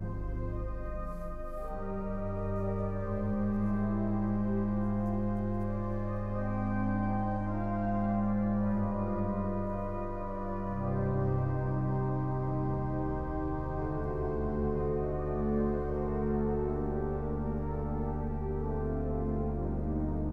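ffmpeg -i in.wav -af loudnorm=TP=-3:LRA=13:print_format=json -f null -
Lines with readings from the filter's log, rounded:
"input_i" : "-33.7",
"input_tp" : "-18.9",
"input_lra" : "2.1",
"input_thresh" : "-43.7",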